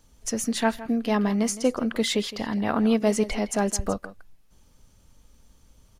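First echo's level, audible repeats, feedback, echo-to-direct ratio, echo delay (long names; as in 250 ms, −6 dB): −16.0 dB, 1, repeats not evenly spaced, −16.0 dB, 163 ms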